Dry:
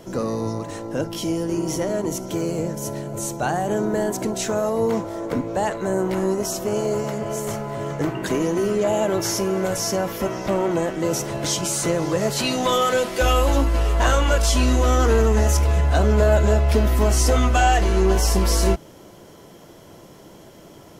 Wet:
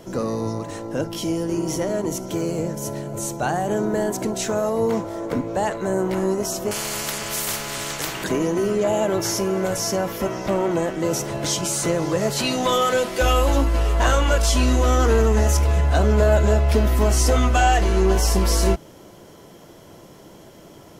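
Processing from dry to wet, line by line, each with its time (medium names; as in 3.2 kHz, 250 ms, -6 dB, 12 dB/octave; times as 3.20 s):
6.71–8.24 s: spectrum-flattening compressor 4:1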